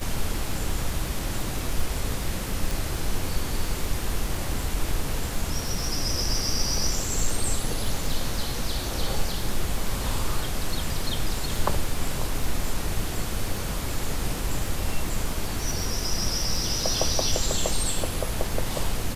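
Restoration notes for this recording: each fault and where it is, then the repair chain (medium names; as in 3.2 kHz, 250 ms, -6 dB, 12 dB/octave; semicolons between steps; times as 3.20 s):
crackle 35 per s -29 dBFS
2.71 s: pop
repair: de-click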